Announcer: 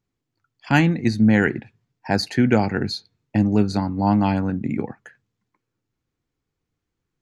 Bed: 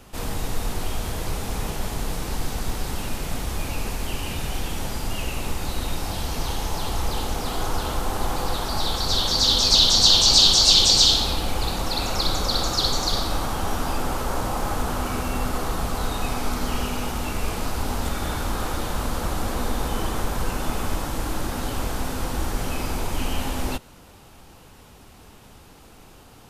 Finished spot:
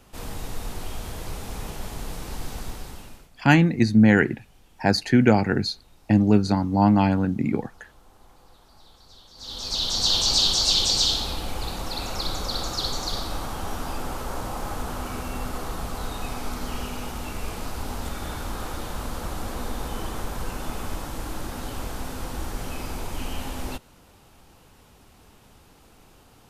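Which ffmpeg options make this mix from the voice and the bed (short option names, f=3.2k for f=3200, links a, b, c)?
-filter_complex "[0:a]adelay=2750,volume=0.5dB[a];[1:a]volume=17dB,afade=t=out:st=2.59:d=0.71:silence=0.0749894,afade=t=in:st=9.35:d=0.82:silence=0.0707946[b];[a][b]amix=inputs=2:normalize=0"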